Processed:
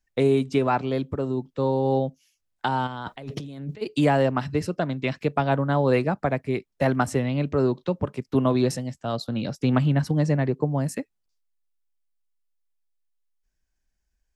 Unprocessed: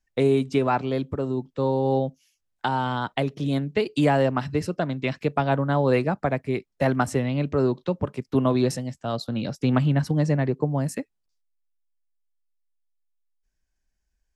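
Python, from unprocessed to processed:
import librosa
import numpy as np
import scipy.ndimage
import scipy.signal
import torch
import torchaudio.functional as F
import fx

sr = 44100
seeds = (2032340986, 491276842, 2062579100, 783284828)

y = fx.over_compress(x, sr, threshold_db=-36.0, ratio=-1.0, at=(2.86, 3.81), fade=0.02)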